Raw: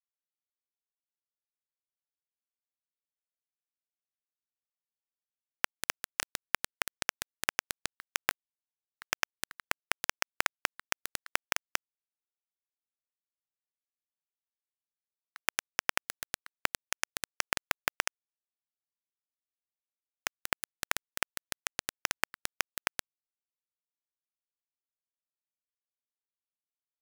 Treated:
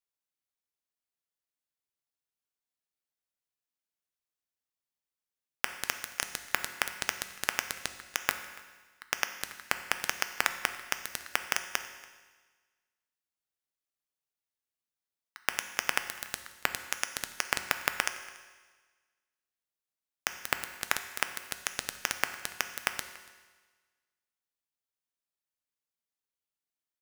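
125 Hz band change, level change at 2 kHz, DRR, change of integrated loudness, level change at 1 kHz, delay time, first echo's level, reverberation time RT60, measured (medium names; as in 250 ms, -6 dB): +2.0 dB, +1.5 dB, 8.0 dB, +1.5 dB, +1.5 dB, 285 ms, -23.0 dB, 1.4 s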